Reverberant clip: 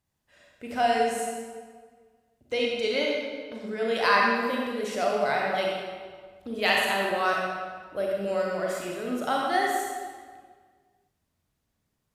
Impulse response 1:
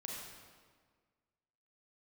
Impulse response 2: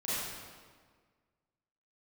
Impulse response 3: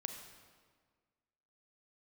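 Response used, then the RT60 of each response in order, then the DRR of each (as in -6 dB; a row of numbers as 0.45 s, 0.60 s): 1; 1.7 s, 1.7 s, 1.7 s; -2.5 dB, -11.5 dB, 5.5 dB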